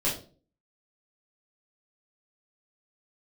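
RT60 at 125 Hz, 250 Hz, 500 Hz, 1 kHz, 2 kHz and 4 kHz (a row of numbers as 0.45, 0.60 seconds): 0.55, 0.55, 0.45, 0.35, 0.30, 0.30 seconds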